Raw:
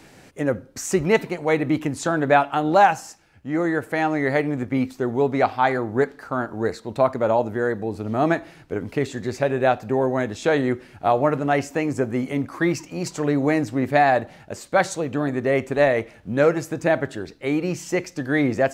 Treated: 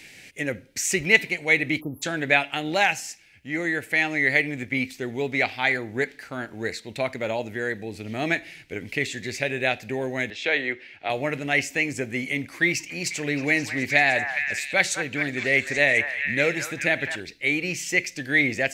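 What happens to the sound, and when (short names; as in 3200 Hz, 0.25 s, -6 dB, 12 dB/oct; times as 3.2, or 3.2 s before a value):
1.81–2.03 spectral delete 1300–11000 Hz
10.3–11.1 three-band isolator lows -13 dB, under 320 Hz, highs -21 dB, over 4600 Hz
12.69–17.2 delay with a stepping band-pass 0.208 s, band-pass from 1200 Hz, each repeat 0.7 oct, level -3 dB
whole clip: resonant high shelf 1600 Hz +10.5 dB, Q 3; gain -6.5 dB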